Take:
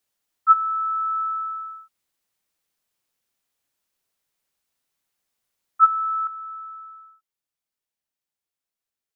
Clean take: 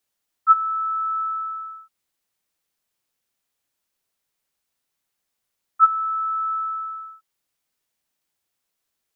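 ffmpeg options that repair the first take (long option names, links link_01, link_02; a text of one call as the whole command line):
ffmpeg -i in.wav -af "asetnsamples=nb_out_samples=441:pad=0,asendcmd='6.27 volume volume 10.5dB',volume=0dB" out.wav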